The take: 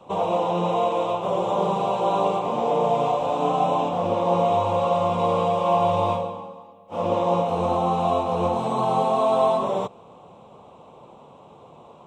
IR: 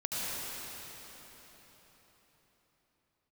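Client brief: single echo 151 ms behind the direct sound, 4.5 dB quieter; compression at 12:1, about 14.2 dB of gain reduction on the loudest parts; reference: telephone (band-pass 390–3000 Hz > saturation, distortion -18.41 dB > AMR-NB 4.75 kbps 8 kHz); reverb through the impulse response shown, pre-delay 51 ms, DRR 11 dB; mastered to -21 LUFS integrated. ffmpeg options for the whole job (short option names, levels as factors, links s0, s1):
-filter_complex "[0:a]acompressor=threshold=0.0282:ratio=12,aecho=1:1:151:0.596,asplit=2[s0][s1];[1:a]atrim=start_sample=2205,adelay=51[s2];[s1][s2]afir=irnorm=-1:irlink=0,volume=0.126[s3];[s0][s3]amix=inputs=2:normalize=0,highpass=390,lowpass=3000,asoftclip=threshold=0.0422,volume=7.5" -ar 8000 -c:a libopencore_amrnb -b:a 4750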